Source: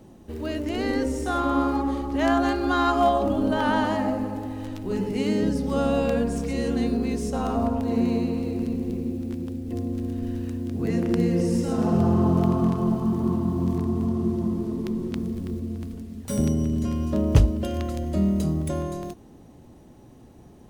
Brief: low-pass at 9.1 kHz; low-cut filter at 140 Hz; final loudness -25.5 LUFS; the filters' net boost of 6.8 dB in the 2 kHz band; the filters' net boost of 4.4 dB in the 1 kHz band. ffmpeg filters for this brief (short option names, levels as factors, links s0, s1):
-af "highpass=140,lowpass=9100,equalizer=f=1000:t=o:g=4,equalizer=f=2000:t=o:g=7.5,volume=0.891"